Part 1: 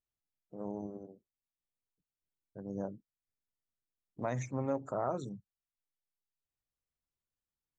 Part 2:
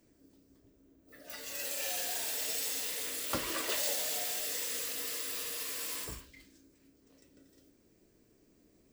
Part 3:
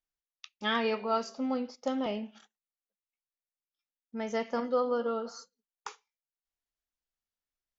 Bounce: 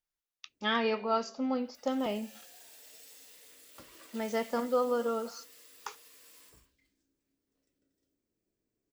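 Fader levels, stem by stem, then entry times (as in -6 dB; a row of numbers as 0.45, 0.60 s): off, -18.5 dB, 0.0 dB; off, 0.45 s, 0.00 s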